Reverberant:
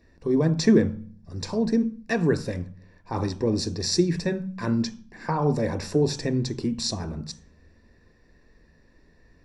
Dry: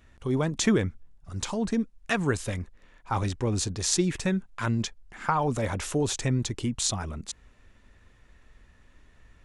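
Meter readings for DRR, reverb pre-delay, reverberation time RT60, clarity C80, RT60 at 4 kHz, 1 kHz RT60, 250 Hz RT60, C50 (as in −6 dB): 8.5 dB, 3 ms, 0.45 s, 19.0 dB, 0.40 s, 0.40 s, 0.80 s, 14.5 dB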